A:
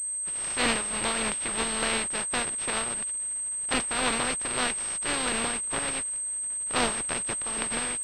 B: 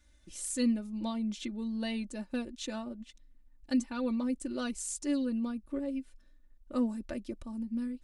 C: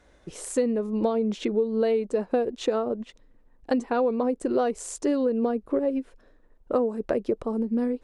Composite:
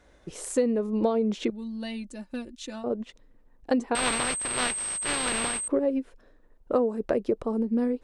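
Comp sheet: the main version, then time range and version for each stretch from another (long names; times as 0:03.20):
C
0:01.50–0:02.84: punch in from B
0:03.95–0:05.68: punch in from A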